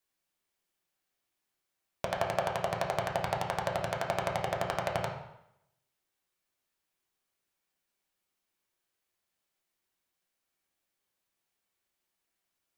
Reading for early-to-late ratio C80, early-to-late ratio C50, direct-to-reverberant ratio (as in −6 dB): 8.0 dB, 5.0 dB, −1.0 dB